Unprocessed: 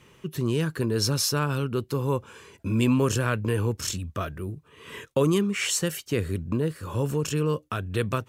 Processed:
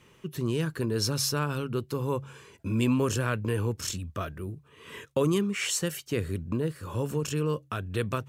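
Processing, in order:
hum removal 68.47 Hz, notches 2
level −3 dB

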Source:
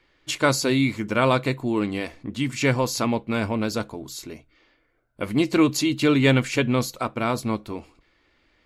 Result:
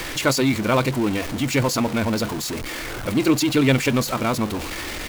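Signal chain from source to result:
converter with a step at zero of −23.5 dBFS
tempo change 1.7×

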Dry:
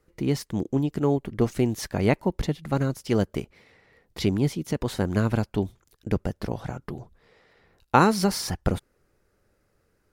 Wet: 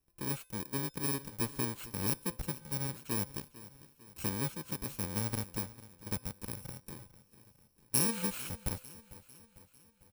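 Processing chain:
samples in bit-reversed order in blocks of 64 samples
tuned comb filter 510 Hz, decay 0.54 s, mix 50%
on a send: repeating echo 449 ms, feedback 53%, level −17.5 dB
on the sum: level −6 dB

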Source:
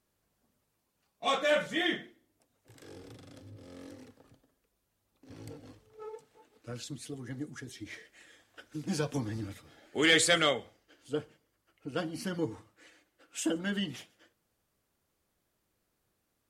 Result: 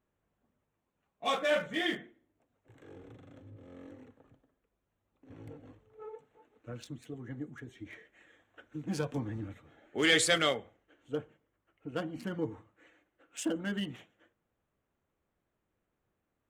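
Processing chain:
adaptive Wiener filter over 9 samples
level −1.5 dB

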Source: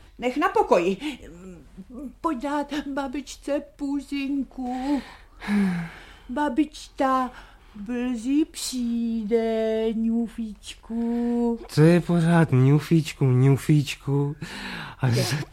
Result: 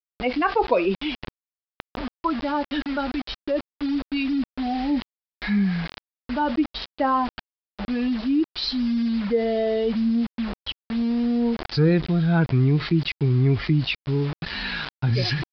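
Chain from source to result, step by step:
spectral dynamics exaggerated over time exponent 1.5
bit reduction 7 bits
downsampling to 11,025 Hz
envelope flattener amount 50%
level −1.5 dB

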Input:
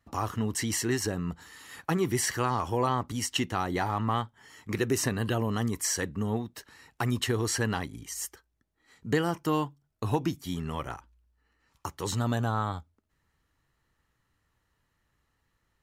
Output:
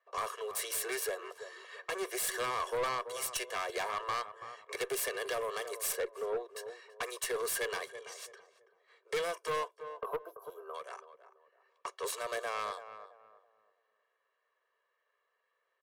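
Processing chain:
phase distortion by the signal itself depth 0.22 ms
0:05.92–0:06.55: spectral tilt −4 dB per octave
low-pass that shuts in the quiet parts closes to 2,600 Hz, open at −28 dBFS
Butterworth high-pass 390 Hz 72 dB per octave
parametric band 9,200 Hz +8 dB 0.27 octaves
comb filter 1.8 ms, depth 76%
0:10.16–0:10.93: downward compressor 6 to 1, threshold −37 dBFS, peak gain reduction 11.5 dB
asymmetric clip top −24.5 dBFS
0:09.99–0:10.74: gain on a spectral selection 1,600–11,000 Hz −26 dB
tape delay 332 ms, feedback 35%, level −11.5 dB, low-pass 1,200 Hz
soft clipping −25.5 dBFS, distortion −14 dB
level −2.5 dB

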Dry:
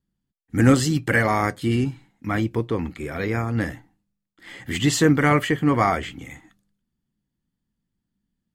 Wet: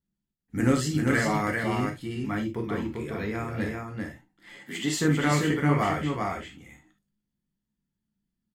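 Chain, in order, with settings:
0:04.57–0:05.00: high-pass filter 180 Hz 24 dB per octave
single-tap delay 394 ms −3.5 dB
on a send at −2.5 dB: convolution reverb, pre-delay 3 ms
on the sum: level −8.5 dB

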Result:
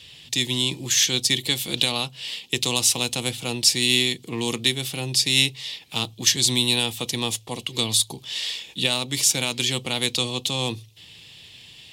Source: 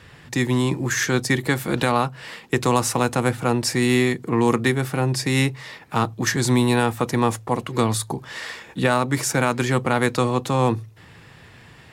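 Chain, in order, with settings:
high shelf with overshoot 2,200 Hz +13.5 dB, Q 3
level −8.5 dB

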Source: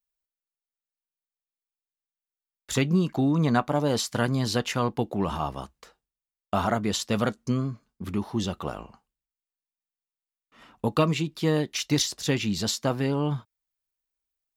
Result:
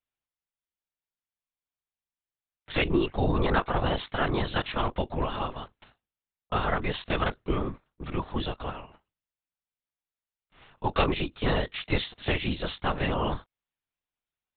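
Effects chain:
ceiling on every frequency bin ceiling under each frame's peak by 14 dB
linear-prediction vocoder at 8 kHz whisper
level −1.5 dB

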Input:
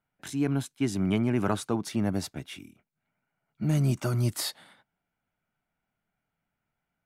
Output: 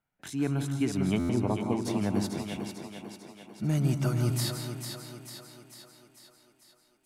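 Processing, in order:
0:01.29–0:01.84: Butterworth low-pass 1,100 Hz 96 dB per octave
feedback echo with a high-pass in the loop 446 ms, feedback 57%, high-pass 180 Hz, level −6.5 dB
on a send at −7 dB: convolution reverb RT60 0.25 s, pre-delay 151 ms
on the sum: buffer that repeats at 0:01.19, samples 512, times 8
level −2 dB

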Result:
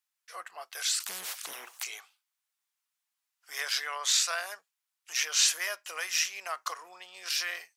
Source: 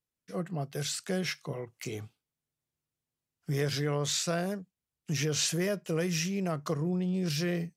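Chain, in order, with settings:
high-pass filter 930 Hz 24 dB per octave
0:01.00–0:01.83: every bin compressed towards the loudest bin 10 to 1
level +6 dB

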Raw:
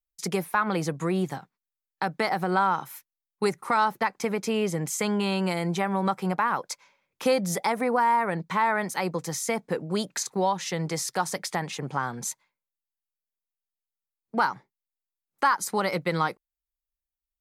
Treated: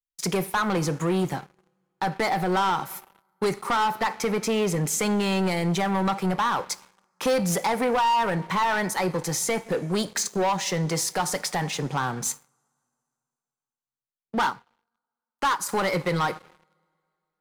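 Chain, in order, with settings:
coupled-rooms reverb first 0.42 s, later 2.7 s, from −18 dB, DRR 13.5 dB
leveller curve on the samples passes 3
0:14.50–0:15.69: expander for the loud parts 1.5 to 1, over −43 dBFS
level −6 dB

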